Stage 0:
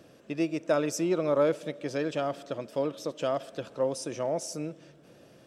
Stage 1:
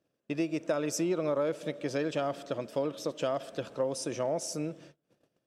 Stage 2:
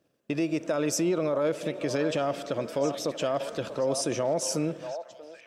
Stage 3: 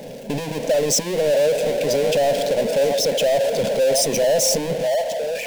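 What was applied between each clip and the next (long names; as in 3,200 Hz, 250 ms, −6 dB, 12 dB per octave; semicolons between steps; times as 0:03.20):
noise gate −51 dBFS, range −27 dB; downward compressor, threshold −27 dBFS, peak gain reduction 7.5 dB; level +1 dB
brickwall limiter −25.5 dBFS, peak gain reduction 7 dB; echo through a band-pass that steps 637 ms, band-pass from 750 Hz, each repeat 1.4 octaves, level −7 dB; level +7 dB
spectral envelope exaggerated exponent 1.5; power curve on the samples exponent 0.35; phaser with its sweep stopped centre 330 Hz, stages 6; level +5 dB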